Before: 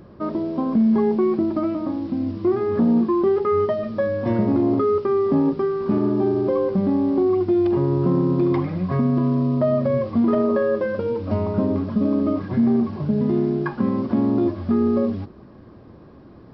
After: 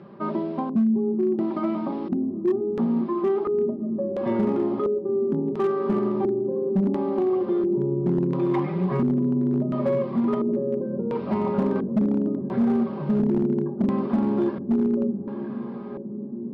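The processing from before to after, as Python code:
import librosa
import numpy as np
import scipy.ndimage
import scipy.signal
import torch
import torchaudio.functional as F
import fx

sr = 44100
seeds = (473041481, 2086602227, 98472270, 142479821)

y = scipy.signal.sosfilt(scipy.signal.butter(4, 120.0, 'highpass', fs=sr, output='sos'), x)
y = fx.peak_eq(y, sr, hz=860.0, db=4.5, octaves=1.0)
y = fx.notch(y, sr, hz=620.0, q=18.0)
y = y + 0.63 * np.pad(y, (int(5.1 * sr / 1000.0), 0))[:len(y)]
y = fx.rider(y, sr, range_db=4, speed_s=0.5)
y = fx.echo_diffused(y, sr, ms=925, feedback_pct=74, wet_db=-12.5)
y = fx.filter_lfo_lowpass(y, sr, shape='square', hz=0.72, low_hz=340.0, high_hz=3100.0, q=1.1)
y = np.clip(10.0 ** (10.0 / 20.0) * y, -1.0, 1.0) / 10.0 ** (10.0 / 20.0)
y = y * librosa.db_to_amplitude(-6.0)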